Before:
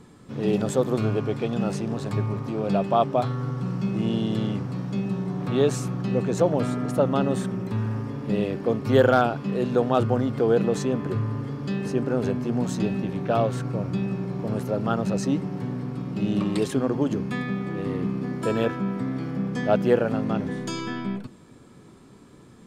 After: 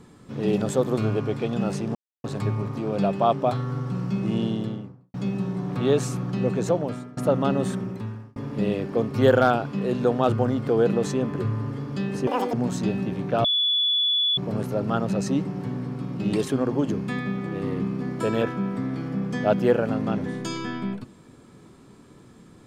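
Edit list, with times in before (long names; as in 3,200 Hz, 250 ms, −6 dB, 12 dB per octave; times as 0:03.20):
0:01.95: splice in silence 0.29 s
0:04.06–0:04.85: fade out and dull
0:06.31–0:06.88: fade out, to −22.5 dB
0:07.48–0:08.07: fade out
0:11.98–0:12.50: play speed 197%
0:13.41–0:14.34: beep over 3,430 Hz −19 dBFS
0:16.30–0:16.56: remove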